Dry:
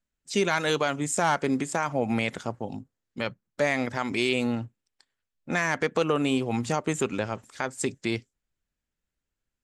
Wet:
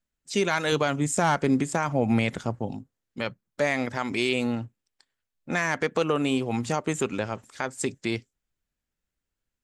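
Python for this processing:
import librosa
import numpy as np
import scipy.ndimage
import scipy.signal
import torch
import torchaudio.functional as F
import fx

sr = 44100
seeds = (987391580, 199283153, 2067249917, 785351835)

y = fx.low_shelf(x, sr, hz=230.0, db=8.5, at=(0.72, 2.72))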